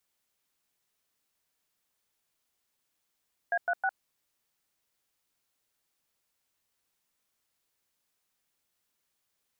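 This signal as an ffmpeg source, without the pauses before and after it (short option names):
-f lavfi -i "aevalsrc='0.0422*clip(min(mod(t,0.158),0.056-mod(t,0.158))/0.002,0,1)*(eq(floor(t/0.158),0)*(sin(2*PI*697*mod(t,0.158))+sin(2*PI*1633*mod(t,0.158)))+eq(floor(t/0.158),1)*(sin(2*PI*697*mod(t,0.158))+sin(2*PI*1477*mod(t,0.158)))+eq(floor(t/0.158),2)*(sin(2*PI*770*mod(t,0.158))+sin(2*PI*1477*mod(t,0.158))))':d=0.474:s=44100"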